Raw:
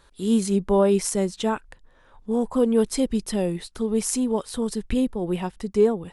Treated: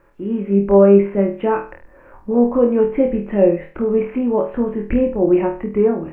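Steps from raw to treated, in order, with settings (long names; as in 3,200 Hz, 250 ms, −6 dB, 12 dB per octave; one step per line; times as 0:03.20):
in parallel at −2.5 dB: downward compressor 5 to 1, threshold −36 dBFS, peak gain reduction 20 dB
on the sum: Butterworth low-pass 2,600 Hz 72 dB per octave
mains-hum notches 50/100/150 Hz
automatic gain control gain up to 7 dB
bit-depth reduction 12 bits, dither none
hollow resonant body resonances 330/550 Hz, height 12 dB, ringing for 70 ms
on a send: flutter between parallel walls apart 4.3 metres, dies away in 0.36 s
on the sum: level −4 dB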